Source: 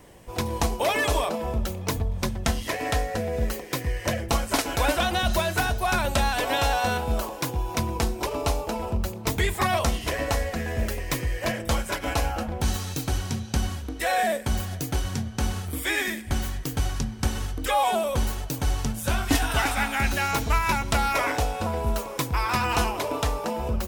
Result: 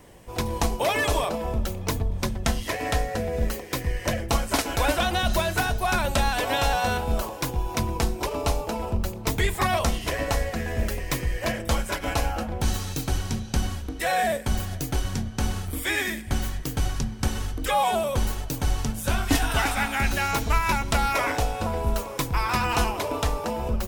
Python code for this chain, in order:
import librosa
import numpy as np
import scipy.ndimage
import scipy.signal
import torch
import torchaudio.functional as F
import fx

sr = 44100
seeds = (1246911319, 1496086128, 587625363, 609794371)

y = fx.octave_divider(x, sr, octaves=2, level_db=-6.0)